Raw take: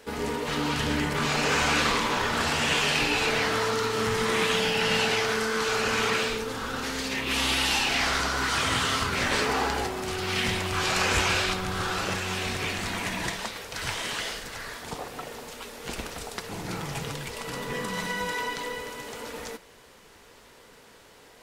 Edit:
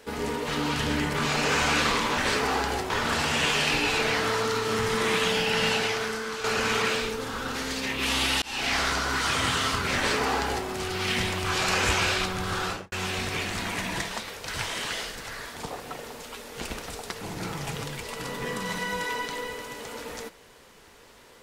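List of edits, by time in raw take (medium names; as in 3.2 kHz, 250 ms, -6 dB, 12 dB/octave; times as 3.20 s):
4.92–5.72 s: fade out, to -8 dB
7.70–8.09 s: fade in equal-power
9.24–9.96 s: copy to 2.18 s
11.94–12.20 s: studio fade out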